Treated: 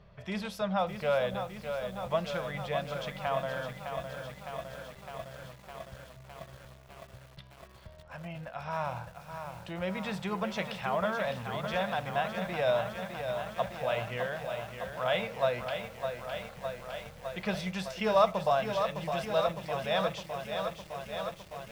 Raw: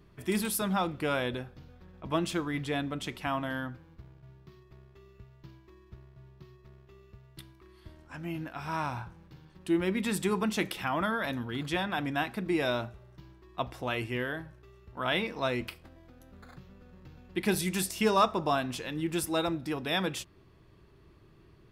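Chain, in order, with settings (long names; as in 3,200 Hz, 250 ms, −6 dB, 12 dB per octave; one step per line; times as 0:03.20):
drawn EQ curve 200 Hz 0 dB, 310 Hz −20 dB, 560 Hz +11 dB, 870 Hz +2 dB, 1,700 Hz 0 dB, 3,300 Hz 0 dB, 5,900 Hz −4 dB, 9,400 Hz −20 dB
in parallel at 0 dB: downward compressor, threshold −53 dBFS, peak gain reduction 33.5 dB
on the sum: feedback echo at a low word length 609 ms, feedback 80%, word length 8 bits, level −7 dB
level −4 dB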